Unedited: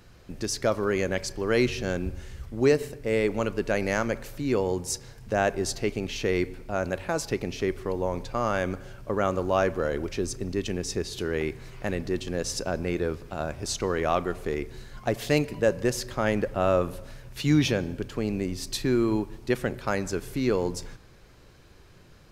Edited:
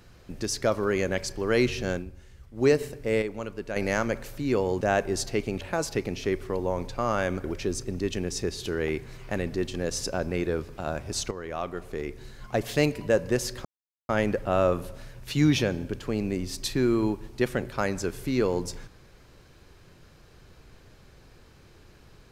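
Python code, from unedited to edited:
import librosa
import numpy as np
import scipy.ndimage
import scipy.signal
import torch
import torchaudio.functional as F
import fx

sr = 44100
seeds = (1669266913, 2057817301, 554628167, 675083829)

y = fx.edit(x, sr, fx.fade_down_up(start_s=1.9, length_s=0.79, db=-10.0, fade_s=0.15, curve='qsin'),
    fx.clip_gain(start_s=3.22, length_s=0.54, db=-7.5),
    fx.cut(start_s=4.81, length_s=0.49),
    fx.cut(start_s=6.1, length_s=0.87),
    fx.cut(start_s=8.8, length_s=1.17),
    fx.fade_in_from(start_s=13.84, length_s=1.27, floor_db=-12.0),
    fx.insert_silence(at_s=16.18, length_s=0.44), tone=tone)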